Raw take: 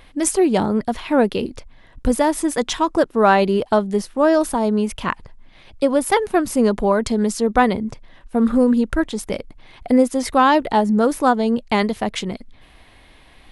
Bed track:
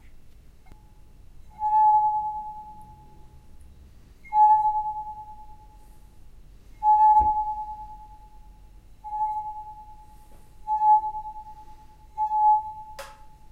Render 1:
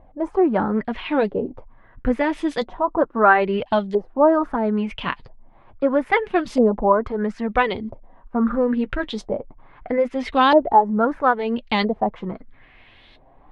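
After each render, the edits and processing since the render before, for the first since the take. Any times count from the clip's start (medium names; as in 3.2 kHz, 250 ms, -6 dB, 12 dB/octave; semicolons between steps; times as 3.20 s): LFO low-pass saw up 0.76 Hz 620–4200 Hz; flange 0.27 Hz, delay 1 ms, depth 8 ms, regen -38%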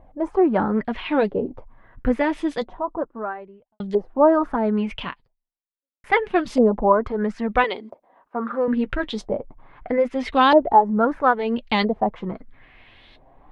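2.11–3.80 s: studio fade out; 5.02–6.04 s: fade out exponential; 7.64–8.68 s: high-pass 400 Hz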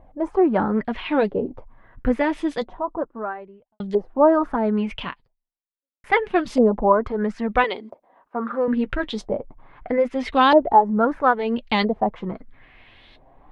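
no audible change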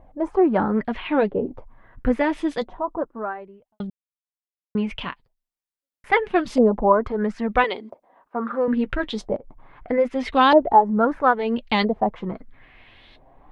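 0.98–1.47 s: low-pass 3.4 kHz; 3.90–4.75 s: mute; 9.36–9.88 s: compression 10:1, threshold -36 dBFS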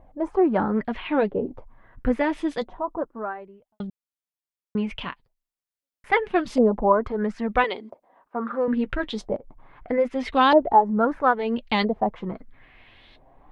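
trim -2 dB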